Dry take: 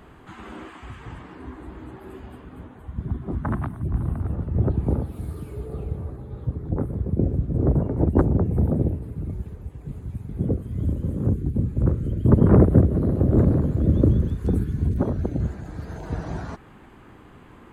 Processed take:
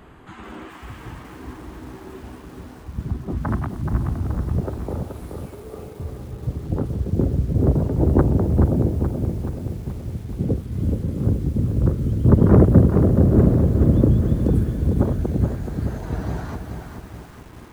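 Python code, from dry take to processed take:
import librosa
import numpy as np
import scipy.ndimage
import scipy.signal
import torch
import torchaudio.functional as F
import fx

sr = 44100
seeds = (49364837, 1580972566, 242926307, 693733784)

y = fx.highpass(x, sr, hz=390.0, slope=12, at=(4.6, 6.0))
y = fx.echo_crushed(y, sr, ms=427, feedback_pct=55, bits=8, wet_db=-6.0)
y = y * librosa.db_to_amplitude(1.5)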